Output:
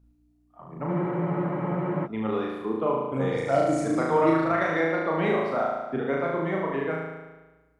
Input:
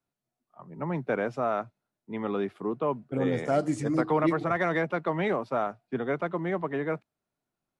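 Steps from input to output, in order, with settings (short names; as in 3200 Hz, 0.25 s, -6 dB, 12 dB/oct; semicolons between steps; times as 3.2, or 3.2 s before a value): hum 60 Hz, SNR 31 dB; reverb removal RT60 1.8 s; on a send: flutter echo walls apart 6.3 m, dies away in 1.2 s; on the sum: spectral freeze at 0.9, 1.16 s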